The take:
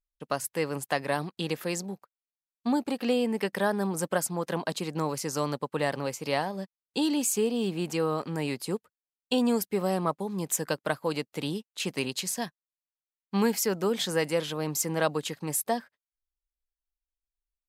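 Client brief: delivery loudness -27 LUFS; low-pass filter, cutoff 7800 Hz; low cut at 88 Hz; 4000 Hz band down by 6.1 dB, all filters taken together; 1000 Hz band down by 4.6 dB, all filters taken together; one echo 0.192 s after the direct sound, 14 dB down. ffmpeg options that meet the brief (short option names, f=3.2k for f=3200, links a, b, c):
-af "highpass=88,lowpass=7.8k,equalizer=f=1k:t=o:g=-6,equalizer=f=4k:t=o:g=-7.5,aecho=1:1:192:0.2,volume=4.5dB"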